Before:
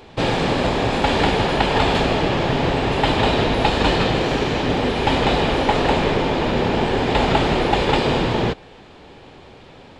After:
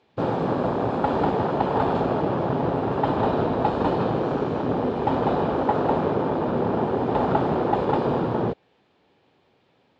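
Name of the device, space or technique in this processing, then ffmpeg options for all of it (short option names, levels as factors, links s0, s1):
over-cleaned archive recording: -af "highpass=110,lowpass=6300,afwtdn=0.1,volume=0.708"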